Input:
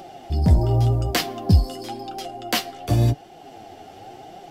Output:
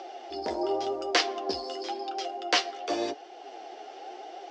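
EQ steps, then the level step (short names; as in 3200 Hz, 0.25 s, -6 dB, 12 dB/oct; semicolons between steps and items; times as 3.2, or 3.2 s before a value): elliptic band-pass 370–5900 Hz, stop band 40 dB; 0.0 dB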